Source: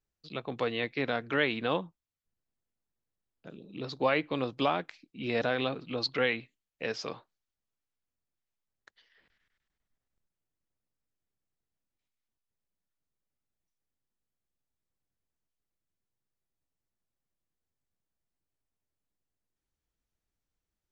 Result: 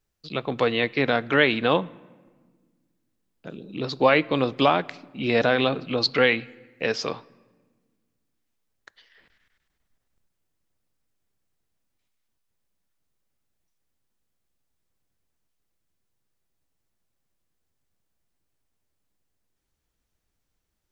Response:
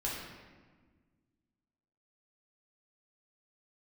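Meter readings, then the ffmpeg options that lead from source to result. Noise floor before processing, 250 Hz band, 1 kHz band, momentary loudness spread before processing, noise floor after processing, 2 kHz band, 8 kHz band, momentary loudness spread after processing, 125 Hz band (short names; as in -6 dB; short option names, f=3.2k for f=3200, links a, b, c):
under -85 dBFS, +9.0 dB, +9.0 dB, 15 LU, -77 dBFS, +9.0 dB, n/a, 15 LU, +9.0 dB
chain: -filter_complex "[0:a]asplit=2[a][b];[1:a]atrim=start_sample=2205[c];[b][c]afir=irnorm=-1:irlink=0,volume=-24dB[d];[a][d]amix=inputs=2:normalize=0,volume=8.5dB"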